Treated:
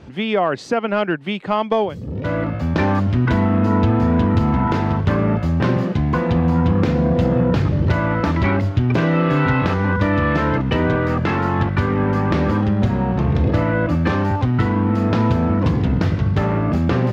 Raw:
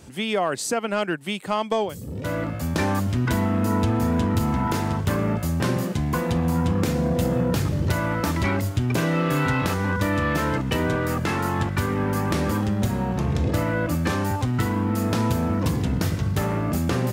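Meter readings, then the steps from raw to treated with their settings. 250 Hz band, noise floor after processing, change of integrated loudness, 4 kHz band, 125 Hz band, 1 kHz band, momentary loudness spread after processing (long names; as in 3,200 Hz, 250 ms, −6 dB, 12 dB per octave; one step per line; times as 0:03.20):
+5.5 dB, −27 dBFS, +5.5 dB, 0.0 dB, +6.0 dB, +5.0 dB, 4 LU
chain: high-frequency loss of the air 240 metres
level +6 dB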